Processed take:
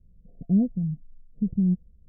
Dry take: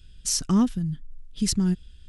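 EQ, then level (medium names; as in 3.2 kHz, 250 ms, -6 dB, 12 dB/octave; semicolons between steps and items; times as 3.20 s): rippled Chebyshev low-pass 710 Hz, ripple 9 dB; +1.0 dB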